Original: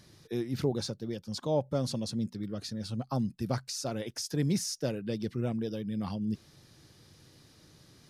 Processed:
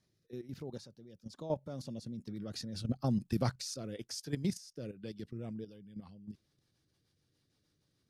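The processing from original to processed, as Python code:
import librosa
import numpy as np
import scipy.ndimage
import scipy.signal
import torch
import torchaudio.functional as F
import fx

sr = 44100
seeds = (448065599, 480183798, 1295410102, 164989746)

y = fx.doppler_pass(x, sr, speed_mps=11, closest_m=6.0, pass_at_s=3.13)
y = fx.rotary_switch(y, sr, hz=1.1, then_hz=6.7, switch_at_s=5.0)
y = fx.level_steps(y, sr, step_db=12)
y = y * librosa.db_to_amplitude(6.5)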